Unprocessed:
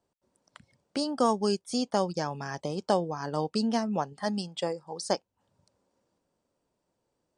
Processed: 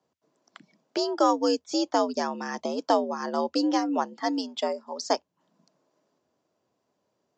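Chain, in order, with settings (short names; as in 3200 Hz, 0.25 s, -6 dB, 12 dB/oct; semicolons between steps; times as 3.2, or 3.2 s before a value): frequency shift +77 Hz; downsampling 16000 Hz; gain +3 dB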